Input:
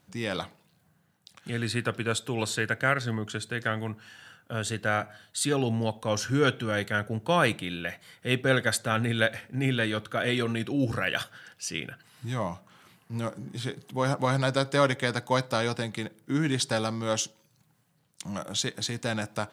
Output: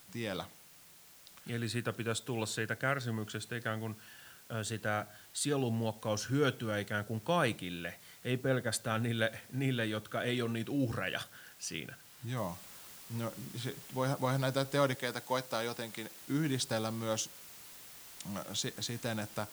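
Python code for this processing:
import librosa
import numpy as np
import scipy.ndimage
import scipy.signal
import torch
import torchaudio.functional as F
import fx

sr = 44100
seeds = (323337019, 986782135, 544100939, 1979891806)

y = fx.high_shelf(x, sr, hz=2300.0, db=-12.0, at=(8.3, 8.71), fade=0.02)
y = fx.noise_floor_step(y, sr, seeds[0], at_s=12.37, before_db=-52, after_db=-46, tilt_db=0.0)
y = fx.highpass(y, sr, hz=310.0, slope=6, at=(14.95, 16.21))
y = fx.dynamic_eq(y, sr, hz=1900.0, q=0.76, threshold_db=-37.0, ratio=4.0, max_db=-3)
y = y * librosa.db_to_amplitude(-6.0)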